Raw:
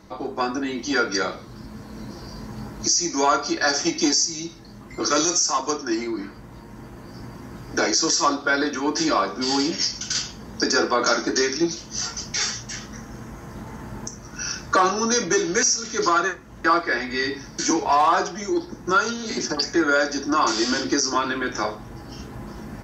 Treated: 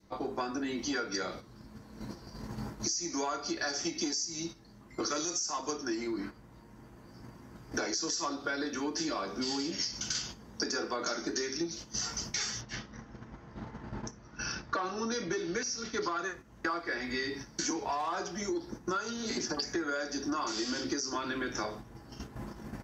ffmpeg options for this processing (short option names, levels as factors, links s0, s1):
-filter_complex "[0:a]asettb=1/sr,asplit=3[s0][s1][s2];[s0]atrim=end=12.614[s3];[s1]atrim=start=12.61:end=16.19,asetpts=PTS-STARTPTS,afade=t=in:d=0.004:c=qsin,afade=t=out:st=3.576:d=0.004:c=qsin,lowpass=f=5000:w=0.5412,lowpass=f=5000:w=1.3066[s4];[s2]atrim=start=16.186[s5];[s3][s4]acrossfade=d=0.004:c1=hsin:c2=qsin[s6];[s6][s5]acrossfade=d=0.004:c1=qsin:c2=hsin,agate=range=0.355:threshold=0.0178:ratio=16:detection=peak,adynamicequalizer=threshold=0.02:dfrequency=1000:dqfactor=0.9:tfrequency=1000:tqfactor=0.9:attack=5:release=100:ratio=0.375:range=2.5:mode=cutabove:tftype=bell,acompressor=threshold=0.0447:ratio=6,volume=0.631"